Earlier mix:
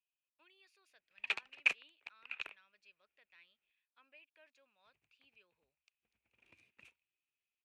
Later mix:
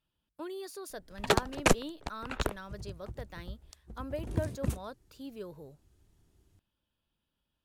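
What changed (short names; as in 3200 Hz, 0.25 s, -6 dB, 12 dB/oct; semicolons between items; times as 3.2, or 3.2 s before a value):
first sound -6.0 dB; second sound: entry -2.15 s; master: remove band-pass 2500 Hz, Q 10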